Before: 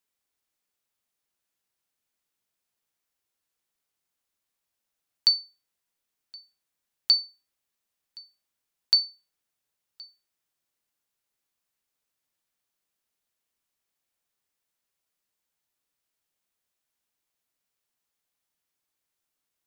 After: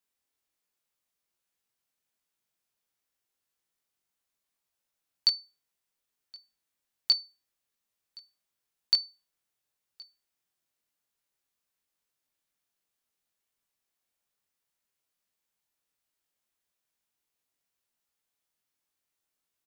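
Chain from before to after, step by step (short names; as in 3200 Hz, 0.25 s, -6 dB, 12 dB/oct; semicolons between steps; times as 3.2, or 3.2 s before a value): doubler 22 ms -4 dB; gain -3 dB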